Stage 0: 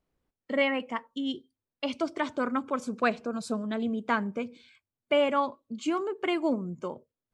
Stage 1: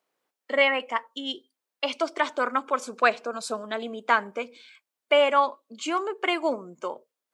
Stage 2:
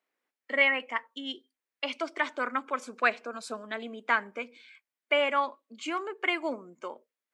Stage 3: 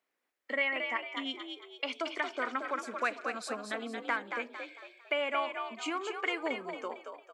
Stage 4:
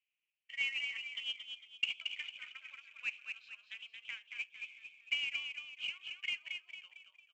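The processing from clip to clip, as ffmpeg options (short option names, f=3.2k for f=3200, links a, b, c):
-af "highpass=550,volume=7dB"
-af "equalizer=f=125:t=o:w=1:g=-6,equalizer=f=250:t=o:w=1:g=6,equalizer=f=2k:t=o:w=1:g=9,volume=-8.5dB"
-filter_complex "[0:a]acompressor=threshold=-33dB:ratio=2,asplit=2[a][b];[b]asplit=5[c][d][e][f][g];[c]adelay=226,afreqshift=56,volume=-6dB[h];[d]adelay=452,afreqshift=112,volume=-14dB[i];[e]adelay=678,afreqshift=168,volume=-21.9dB[j];[f]adelay=904,afreqshift=224,volume=-29.9dB[k];[g]adelay=1130,afreqshift=280,volume=-37.8dB[l];[h][i][j][k][l]amix=inputs=5:normalize=0[m];[a][m]amix=inputs=2:normalize=0"
-af "asuperpass=centerf=2700:order=4:qfactor=4.2,aresample=16000,acrusher=bits=5:mode=log:mix=0:aa=0.000001,aresample=44100,volume=4.5dB"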